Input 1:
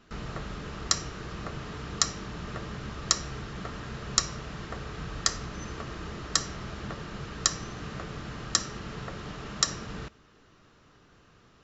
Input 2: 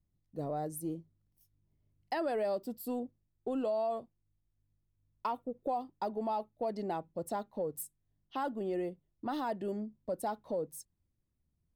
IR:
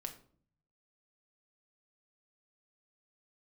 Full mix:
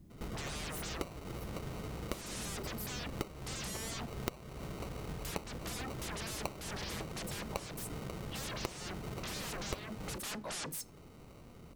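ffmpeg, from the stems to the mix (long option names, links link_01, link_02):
-filter_complex "[0:a]acrusher=samples=26:mix=1:aa=0.000001,adelay=100,volume=2.5dB[link_01];[1:a]equalizer=frequency=280:width_type=o:width=2.1:gain=13.5,acompressor=threshold=-30dB:ratio=1.5,aeval=exprs='0.0158*sin(PI/2*2.82*val(0)/0.0158)':channel_layout=same,volume=2dB,asplit=2[link_02][link_03];[link_03]volume=-9dB[link_04];[2:a]atrim=start_sample=2205[link_05];[link_04][link_05]afir=irnorm=-1:irlink=0[link_06];[link_01][link_02][link_06]amix=inputs=3:normalize=0,acompressor=threshold=-41dB:ratio=3"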